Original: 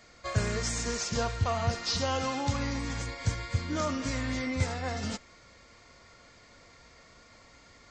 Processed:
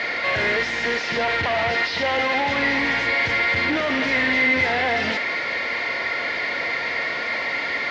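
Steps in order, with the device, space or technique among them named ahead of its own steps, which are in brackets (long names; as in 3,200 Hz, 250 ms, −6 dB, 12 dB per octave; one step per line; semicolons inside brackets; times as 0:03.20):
overdrive pedal into a guitar cabinet (mid-hump overdrive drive 42 dB, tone 2,900 Hz, clips at −14.5 dBFS; loudspeaker in its box 85–4,300 Hz, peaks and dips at 110 Hz −8 dB, 190 Hz −5 dB, 1,200 Hz −8 dB, 2,000 Hz +9 dB)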